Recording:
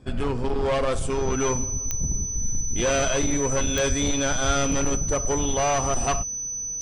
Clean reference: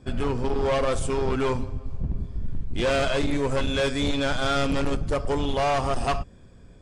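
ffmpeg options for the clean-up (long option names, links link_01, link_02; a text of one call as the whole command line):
ffmpeg -i in.wav -filter_complex "[0:a]adeclick=threshold=4,bandreject=frequency=6000:width=30,asplit=3[link_01][link_02][link_03];[link_01]afade=type=out:start_time=3.88:duration=0.02[link_04];[link_02]highpass=frequency=140:width=0.5412,highpass=frequency=140:width=1.3066,afade=type=in:start_time=3.88:duration=0.02,afade=type=out:start_time=4:duration=0.02[link_05];[link_03]afade=type=in:start_time=4:duration=0.02[link_06];[link_04][link_05][link_06]amix=inputs=3:normalize=0,asplit=3[link_07][link_08][link_09];[link_07]afade=type=out:start_time=4.46:duration=0.02[link_10];[link_08]highpass=frequency=140:width=0.5412,highpass=frequency=140:width=1.3066,afade=type=in:start_time=4.46:duration=0.02,afade=type=out:start_time=4.58:duration=0.02[link_11];[link_09]afade=type=in:start_time=4.58:duration=0.02[link_12];[link_10][link_11][link_12]amix=inputs=3:normalize=0" out.wav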